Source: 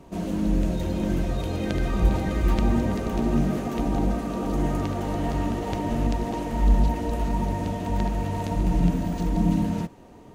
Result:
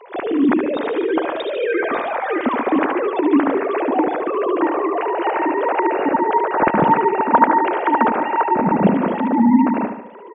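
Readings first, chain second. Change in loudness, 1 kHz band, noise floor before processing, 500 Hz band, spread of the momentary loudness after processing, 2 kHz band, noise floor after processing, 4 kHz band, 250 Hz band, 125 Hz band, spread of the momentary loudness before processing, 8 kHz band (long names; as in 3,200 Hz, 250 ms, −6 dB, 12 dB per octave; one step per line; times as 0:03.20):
+8.0 dB, +16.0 dB, −47 dBFS, +12.0 dB, 6 LU, +14.5 dB, −32 dBFS, can't be measured, +7.0 dB, −7.0 dB, 5 LU, below −35 dB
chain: three sine waves on the formant tracks
low-shelf EQ 230 Hz −11 dB
on a send: repeating echo 73 ms, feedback 50%, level −7.5 dB
on the sum: level +8 dB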